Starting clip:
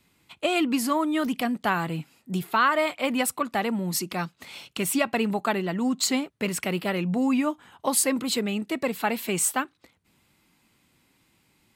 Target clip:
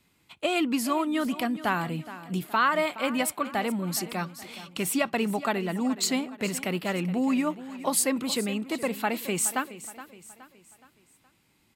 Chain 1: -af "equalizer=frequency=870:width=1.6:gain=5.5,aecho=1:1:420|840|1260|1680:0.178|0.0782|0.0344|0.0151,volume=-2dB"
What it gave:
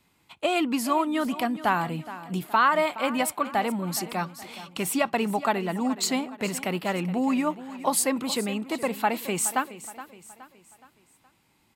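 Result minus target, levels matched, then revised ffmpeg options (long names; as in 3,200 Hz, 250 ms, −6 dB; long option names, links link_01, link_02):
1,000 Hz band +3.0 dB
-af "aecho=1:1:420|840|1260|1680:0.178|0.0782|0.0344|0.0151,volume=-2dB"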